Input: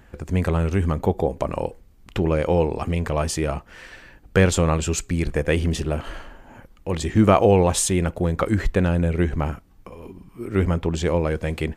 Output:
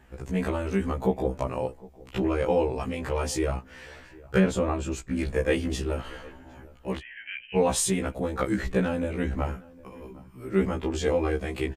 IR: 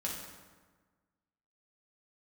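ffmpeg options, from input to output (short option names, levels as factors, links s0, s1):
-filter_complex "[0:a]asettb=1/sr,asplit=3[s0][s1][s2];[s0]atrim=end=4.394[s3];[s1]atrim=start=4.39:end=5.18,asetpts=PTS-STARTPTS,afade=t=in:d=0.004:c=qsin,afade=t=out:st=0.786:d=0.004:c=qsin,highshelf=f=2000:g=-10.5[s4];[s2]atrim=start=5.176[s5];[s3][s4]acrossfade=d=0.004:c1=hsin:c2=qsin[s6];[s6][s5]acrossfade=d=0.004:c1=qsin:c2=hsin,asplit=3[s7][s8][s9];[s7]afade=t=out:st=6.98:d=0.02[s10];[s8]asuperpass=centerf=2200:order=20:qfactor=1.4,afade=t=in:st=6.98:d=0.02,afade=t=out:st=7.55:d=0.02[s11];[s9]afade=t=in:st=7.55:d=0.02[s12];[s10][s11][s12]amix=inputs=3:normalize=0,asettb=1/sr,asplit=3[s13][s14][s15];[s13]atrim=end=10.734[s16];[s14]atrim=start=10.73:end=11.4,asetpts=PTS-STARTPTS,afade=t=in:d=0.004:c=qsin,afade=t=out:st=0.666:d=0.004:c=qsin,asplit=2[s17][s18];[s18]adelay=13,volume=0.447[s19];[s17][s19]amix=inputs=2:normalize=0,atrim=end_sample=29547[s20];[s15]atrim=start=11.396[s21];[s16][s20]acrossfade=d=0.004:c1=hsin:c2=qsin[s22];[s22][s21]acrossfade=d=0.004:c1=qsin:c2=hsin,asplit=2[s23][s24];[s24]adelay=758,volume=0.0794,highshelf=f=4000:g=-17.1[s25];[s23][s25]amix=inputs=2:normalize=0,afftfilt=real='re*1.73*eq(mod(b,3),0)':imag='im*1.73*eq(mod(b,3),0)':win_size=2048:overlap=0.75,volume=0.841"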